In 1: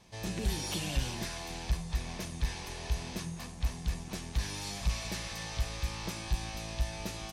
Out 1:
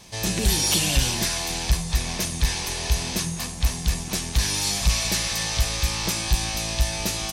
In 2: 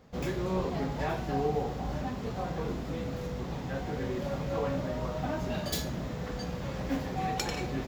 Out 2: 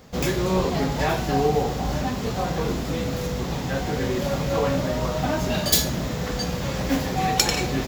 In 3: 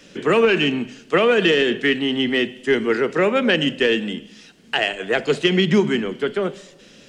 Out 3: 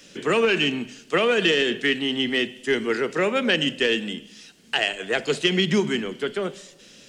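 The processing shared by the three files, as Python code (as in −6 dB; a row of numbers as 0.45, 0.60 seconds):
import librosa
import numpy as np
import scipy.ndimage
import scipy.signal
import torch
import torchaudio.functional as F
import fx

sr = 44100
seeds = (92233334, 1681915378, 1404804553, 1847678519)

y = fx.high_shelf(x, sr, hz=3500.0, db=10.0)
y = y * 10.0 ** (-24 / 20.0) / np.sqrt(np.mean(np.square(y)))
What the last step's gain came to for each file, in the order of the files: +9.5, +8.5, −5.0 decibels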